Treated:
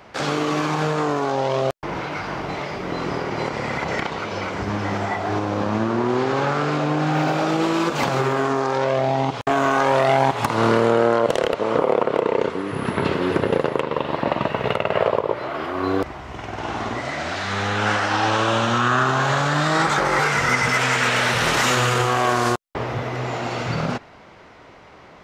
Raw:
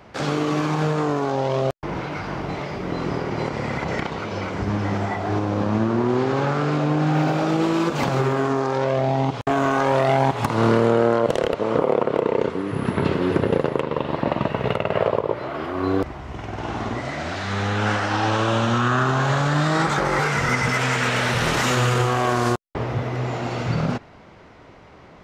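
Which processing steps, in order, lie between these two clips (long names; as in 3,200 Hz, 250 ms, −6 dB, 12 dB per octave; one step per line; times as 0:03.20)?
low-shelf EQ 370 Hz −7.5 dB
level +3.5 dB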